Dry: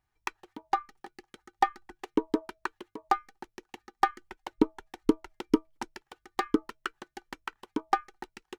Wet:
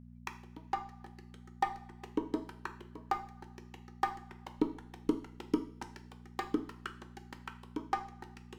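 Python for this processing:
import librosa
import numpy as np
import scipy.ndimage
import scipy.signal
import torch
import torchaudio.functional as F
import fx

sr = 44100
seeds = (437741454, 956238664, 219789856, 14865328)

y = fx.rev_double_slope(x, sr, seeds[0], early_s=0.47, late_s=2.5, knee_db=-22, drr_db=7.0)
y = fx.dmg_buzz(y, sr, base_hz=60.0, harmonics=4, level_db=-45.0, tilt_db=-1, odd_only=False)
y = y * 10.0 ** (-8.0 / 20.0)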